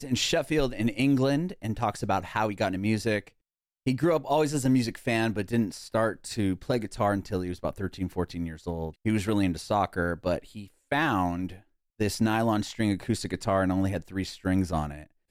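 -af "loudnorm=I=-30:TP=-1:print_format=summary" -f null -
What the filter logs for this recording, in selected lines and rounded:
Input Integrated:    -28.3 LUFS
Input True Peak:     -13.3 dBTP
Input LRA:             2.3 LU
Input Threshold:     -38.5 LUFS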